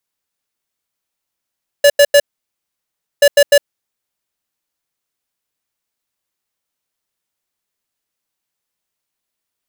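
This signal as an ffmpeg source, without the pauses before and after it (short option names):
-f lavfi -i "aevalsrc='0.447*(2*lt(mod(574*t,1),0.5)-1)*clip(min(mod(mod(t,1.38),0.15),0.06-mod(mod(t,1.38),0.15))/0.005,0,1)*lt(mod(t,1.38),0.45)':d=2.76:s=44100"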